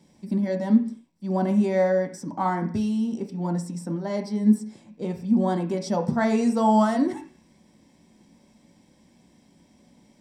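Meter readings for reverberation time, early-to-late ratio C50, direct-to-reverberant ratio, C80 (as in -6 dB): 0.45 s, 11.0 dB, 2.5 dB, 16.0 dB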